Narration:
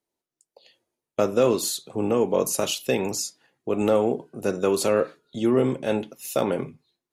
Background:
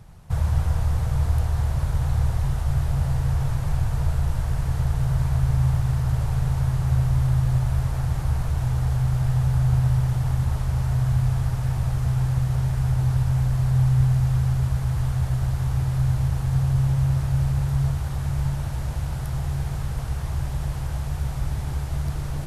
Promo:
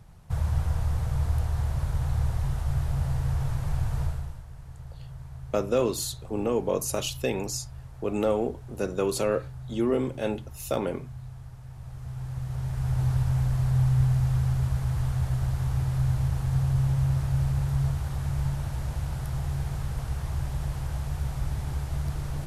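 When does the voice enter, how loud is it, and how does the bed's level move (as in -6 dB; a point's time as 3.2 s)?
4.35 s, -4.5 dB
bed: 4.03 s -4.5 dB
4.45 s -19.5 dB
11.67 s -19.5 dB
13.02 s -3.5 dB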